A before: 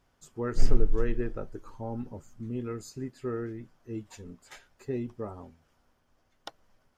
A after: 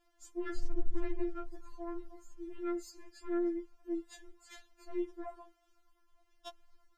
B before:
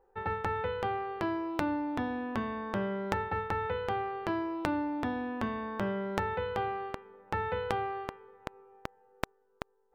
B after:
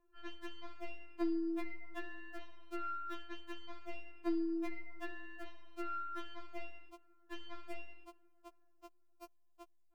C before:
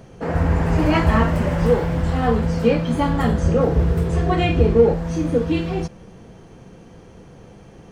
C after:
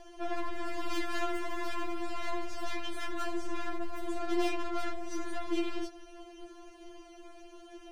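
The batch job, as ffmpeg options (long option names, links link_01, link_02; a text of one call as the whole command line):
ffmpeg -i in.wav -af "equalizer=frequency=130:width=1.4:gain=-6,aeval=exprs='(tanh(28.2*val(0)+0.35)-tanh(0.35))/28.2':channel_layout=same,afftfilt=real='re*4*eq(mod(b,16),0)':imag='im*4*eq(mod(b,16),0)':win_size=2048:overlap=0.75" out.wav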